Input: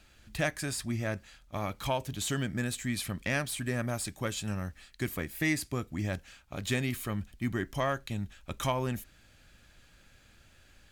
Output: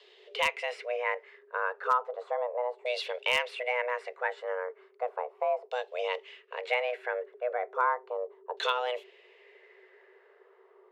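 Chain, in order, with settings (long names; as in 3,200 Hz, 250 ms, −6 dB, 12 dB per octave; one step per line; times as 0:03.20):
auto-filter low-pass saw down 0.35 Hz 550–3,400 Hz
frequency shifter +370 Hz
wave folding −14.5 dBFS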